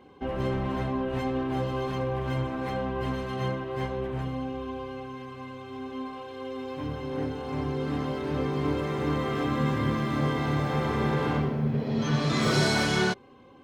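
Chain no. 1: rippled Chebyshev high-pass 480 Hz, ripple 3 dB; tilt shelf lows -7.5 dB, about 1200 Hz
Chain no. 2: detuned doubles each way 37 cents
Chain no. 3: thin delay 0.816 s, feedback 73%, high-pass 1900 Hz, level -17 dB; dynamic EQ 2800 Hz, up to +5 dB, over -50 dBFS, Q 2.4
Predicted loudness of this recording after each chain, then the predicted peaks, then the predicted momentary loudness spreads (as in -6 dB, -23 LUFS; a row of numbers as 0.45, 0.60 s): -33.0, -32.5, -29.0 LUFS; -14.0, -14.5, -12.5 dBFS; 17, 12, 13 LU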